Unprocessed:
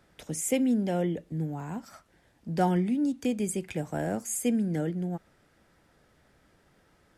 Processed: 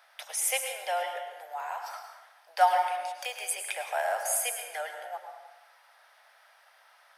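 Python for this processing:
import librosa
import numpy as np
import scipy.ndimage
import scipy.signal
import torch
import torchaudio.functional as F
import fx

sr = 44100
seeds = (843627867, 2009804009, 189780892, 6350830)

y = scipy.signal.sosfilt(scipy.signal.butter(8, 650.0, 'highpass', fs=sr, output='sos'), x)
y = fx.peak_eq(y, sr, hz=7300.0, db=-13.5, octaves=0.28)
y = fx.rev_plate(y, sr, seeds[0], rt60_s=1.1, hf_ratio=0.7, predelay_ms=90, drr_db=4.5)
y = y * librosa.db_to_amplitude(7.5)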